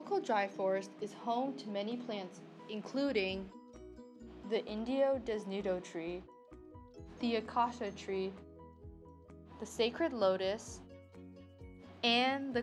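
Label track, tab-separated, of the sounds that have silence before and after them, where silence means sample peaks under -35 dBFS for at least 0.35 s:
2.710000	3.390000	sound
4.520000	6.160000	sound
7.230000	8.280000	sound
9.620000	10.550000	sound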